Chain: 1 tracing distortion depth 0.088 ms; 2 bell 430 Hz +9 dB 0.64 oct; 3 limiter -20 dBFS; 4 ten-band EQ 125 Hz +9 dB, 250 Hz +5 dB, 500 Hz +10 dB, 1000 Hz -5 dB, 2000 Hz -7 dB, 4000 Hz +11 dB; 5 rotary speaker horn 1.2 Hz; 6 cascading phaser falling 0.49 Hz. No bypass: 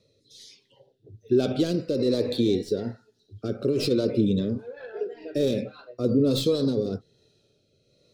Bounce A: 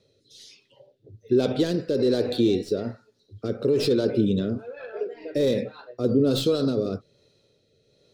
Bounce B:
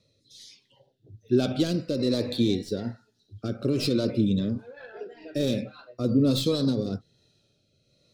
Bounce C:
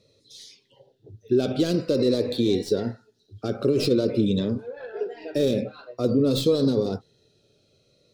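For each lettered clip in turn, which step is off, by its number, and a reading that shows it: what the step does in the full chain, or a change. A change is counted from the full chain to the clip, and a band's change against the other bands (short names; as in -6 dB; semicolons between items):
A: 6, 1 kHz band +3.0 dB; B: 2, 500 Hz band -5.0 dB; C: 5, 1 kHz band +2.5 dB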